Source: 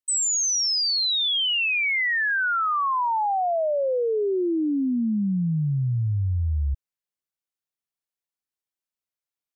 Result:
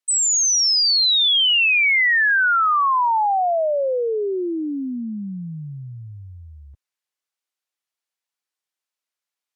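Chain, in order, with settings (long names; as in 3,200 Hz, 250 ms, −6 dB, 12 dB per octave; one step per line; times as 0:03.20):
meter weighting curve A
level +5.5 dB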